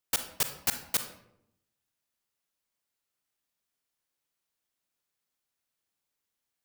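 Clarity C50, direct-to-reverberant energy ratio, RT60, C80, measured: 9.0 dB, 7.0 dB, 0.75 s, 12.0 dB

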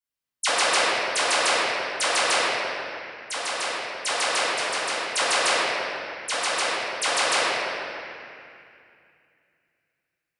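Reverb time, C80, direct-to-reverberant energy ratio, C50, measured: 2.5 s, -2.5 dB, -11.5 dB, -4.5 dB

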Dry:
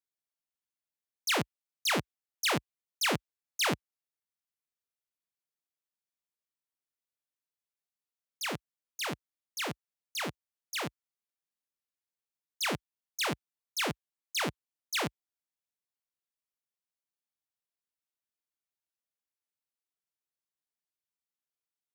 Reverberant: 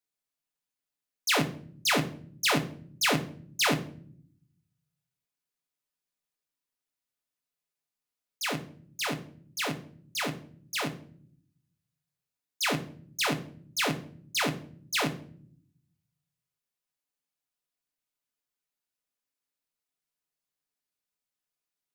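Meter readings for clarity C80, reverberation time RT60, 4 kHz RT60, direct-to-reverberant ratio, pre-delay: 18.0 dB, 0.55 s, 0.40 s, 3.0 dB, 4 ms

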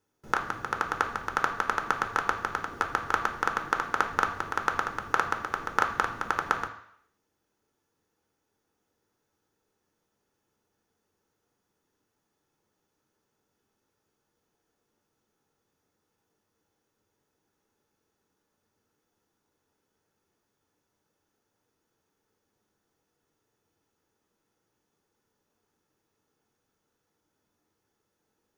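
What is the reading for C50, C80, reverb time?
11.0 dB, 13.0 dB, 0.70 s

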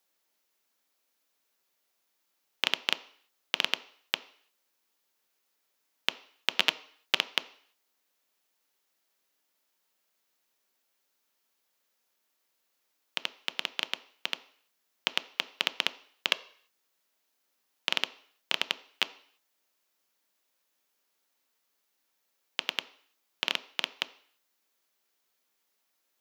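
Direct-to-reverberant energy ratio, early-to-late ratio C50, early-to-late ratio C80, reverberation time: 11.5 dB, 18.0 dB, 21.0 dB, 0.55 s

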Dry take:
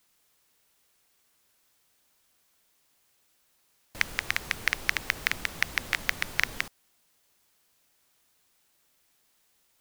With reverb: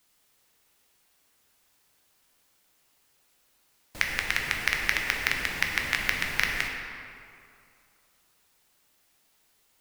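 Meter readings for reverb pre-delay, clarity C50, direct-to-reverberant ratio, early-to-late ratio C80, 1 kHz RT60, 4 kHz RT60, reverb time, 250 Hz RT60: 8 ms, 2.5 dB, 0.5 dB, 3.5 dB, 2.5 s, 1.5 s, 2.5 s, 2.3 s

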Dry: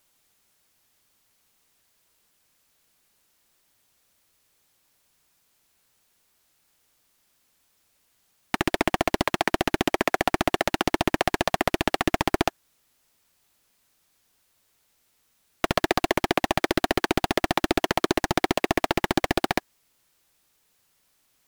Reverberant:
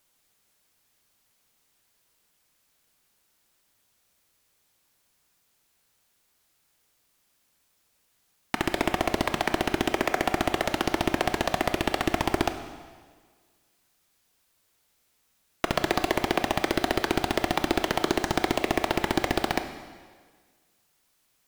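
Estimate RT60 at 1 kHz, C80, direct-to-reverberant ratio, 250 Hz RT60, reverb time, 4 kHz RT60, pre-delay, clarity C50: 1.6 s, 10.5 dB, 7.5 dB, 1.5 s, 1.6 s, 1.5 s, 7 ms, 9.5 dB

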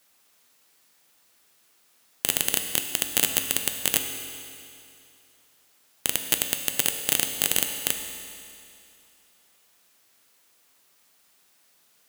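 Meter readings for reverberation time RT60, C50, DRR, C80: 2.6 s, 6.5 dB, 5.0 dB, 7.0 dB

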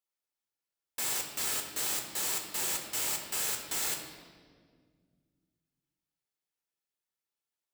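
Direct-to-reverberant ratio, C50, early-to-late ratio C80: 2.0 dB, 6.0 dB, 7.5 dB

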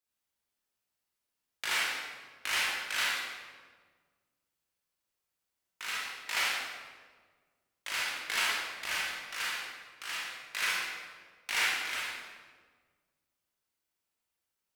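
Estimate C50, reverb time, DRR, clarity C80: -2.5 dB, 1.5 s, -6.5 dB, 0.5 dB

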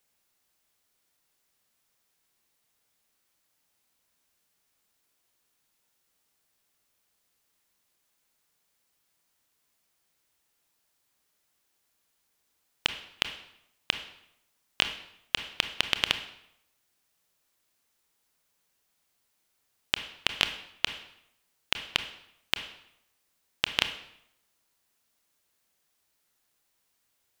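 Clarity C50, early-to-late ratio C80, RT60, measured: 10.5 dB, 13.5 dB, 0.80 s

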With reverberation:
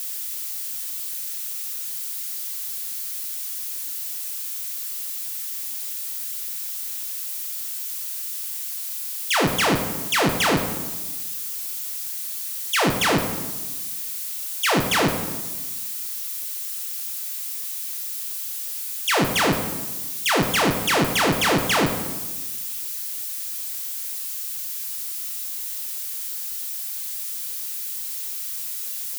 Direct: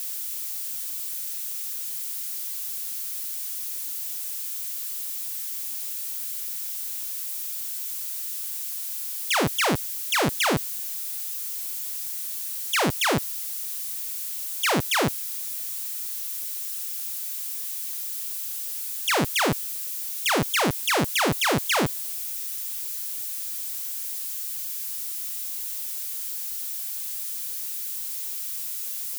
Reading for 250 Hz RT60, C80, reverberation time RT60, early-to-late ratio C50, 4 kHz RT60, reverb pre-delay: 1.5 s, 9.0 dB, 1.3 s, 7.0 dB, 0.90 s, 4 ms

